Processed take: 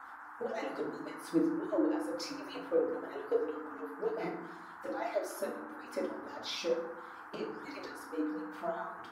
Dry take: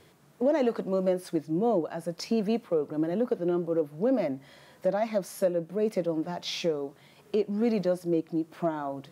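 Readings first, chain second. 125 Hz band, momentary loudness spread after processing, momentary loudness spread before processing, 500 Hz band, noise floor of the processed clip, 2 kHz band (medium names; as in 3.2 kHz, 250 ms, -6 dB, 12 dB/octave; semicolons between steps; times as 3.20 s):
-17.5 dB, 11 LU, 6 LU, -8.5 dB, -49 dBFS, 0.0 dB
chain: harmonic-percussive separation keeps percussive; FDN reverb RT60 0.78 s, low-frequency decay 1.6×, high-frequency decay 0.55×, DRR -3.5 dB; band noise 780–1600 Hz -42 dBFS; trim -7.5 dB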